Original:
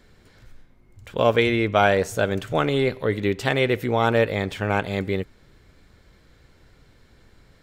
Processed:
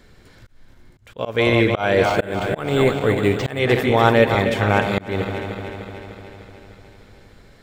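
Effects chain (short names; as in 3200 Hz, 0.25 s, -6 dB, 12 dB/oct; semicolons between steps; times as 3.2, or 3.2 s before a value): regenerating reverse delay 0.15 s, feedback 78%, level -9 dB; auto swell 0.252 s; 2.05–3.59 decimation joined by straight lines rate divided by 4×; gain +4.5 dB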